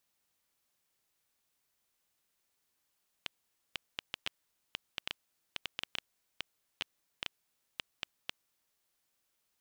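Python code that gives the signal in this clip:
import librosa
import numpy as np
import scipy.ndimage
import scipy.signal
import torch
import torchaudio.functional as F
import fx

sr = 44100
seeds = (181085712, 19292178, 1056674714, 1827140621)

y = fx.geiger_clicks(sr, seeds[0], length_s=5.3, per_s=4.6, level_db=-17.0)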